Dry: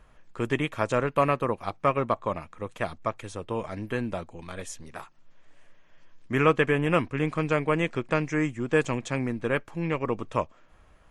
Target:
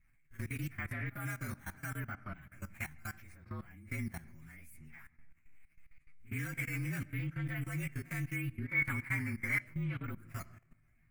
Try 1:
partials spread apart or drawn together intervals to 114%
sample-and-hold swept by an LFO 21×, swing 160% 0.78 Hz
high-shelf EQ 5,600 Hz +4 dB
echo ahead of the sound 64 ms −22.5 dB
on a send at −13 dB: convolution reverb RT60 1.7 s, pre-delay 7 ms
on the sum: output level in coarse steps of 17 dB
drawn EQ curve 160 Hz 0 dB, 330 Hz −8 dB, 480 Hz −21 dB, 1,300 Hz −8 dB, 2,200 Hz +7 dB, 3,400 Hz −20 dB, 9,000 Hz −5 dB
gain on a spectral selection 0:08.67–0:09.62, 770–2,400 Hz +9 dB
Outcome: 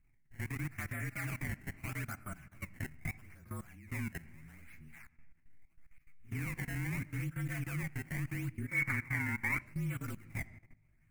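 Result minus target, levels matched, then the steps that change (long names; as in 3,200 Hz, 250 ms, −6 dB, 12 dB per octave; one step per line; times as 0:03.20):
sample-and-hold swept by an LFO: distortion +11 dB
change: sample-and-hold swept by an LFO 5×, swing 160% 0.78 Hz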